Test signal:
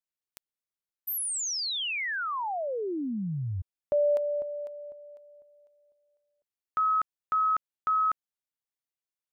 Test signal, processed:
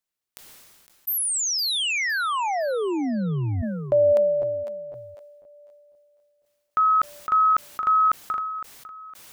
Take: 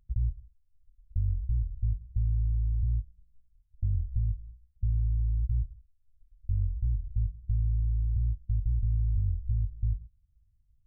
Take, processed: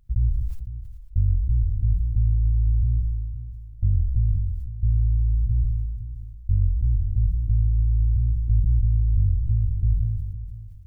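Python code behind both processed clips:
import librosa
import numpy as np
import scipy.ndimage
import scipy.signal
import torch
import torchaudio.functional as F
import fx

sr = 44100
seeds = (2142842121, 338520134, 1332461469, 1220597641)

y = fx.echo_feedback(x, sr, ms=510, feedback_pct=32, wet_db=-13.5)
y = fx.sustainer(y, sr, db_per_s=30.0)
y = y * librosa.db_to_amplitude(6.5)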